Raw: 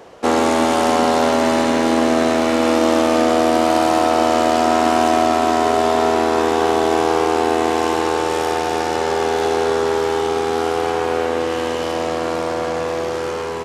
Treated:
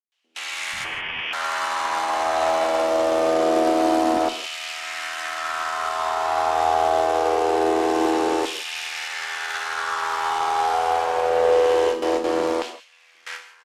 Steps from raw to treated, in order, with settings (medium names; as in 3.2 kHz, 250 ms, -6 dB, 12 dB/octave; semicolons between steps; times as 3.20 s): gate with hold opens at -11 dBFS; steep high-pass 150 Hz 48 dB/octave; peak limiter -10.5 dBFS, peak gain reduction 8 dB; LFO high-pass saw down 0.24 Hz 250–3000 Hz; 0.72–1.21 s: frequency inversion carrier 3.9 kHz; bands offset in time lows, highs 120 ms, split 270 Hz; gated-style reverb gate 190 ms flat, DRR 10 dB; Chebyshev shaper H 8 -35 dB, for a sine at 2 dBFS; trim -3 dB